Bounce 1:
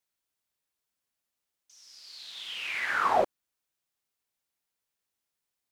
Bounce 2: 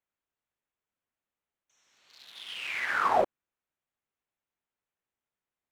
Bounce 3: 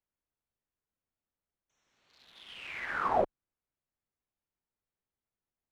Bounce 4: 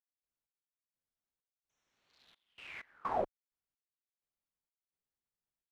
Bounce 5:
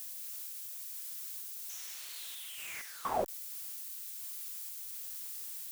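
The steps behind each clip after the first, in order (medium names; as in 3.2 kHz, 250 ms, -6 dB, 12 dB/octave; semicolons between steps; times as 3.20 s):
local Wiener filter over 9 samples
tilt EQ -2.5 dB/octave; trim -4.5 dB
trance gate ".x..xx.xxx.x.x" 64 bpm -24 dB; trim -6 dB
zero-crossing glitches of -36 dBFS; trim +1 dB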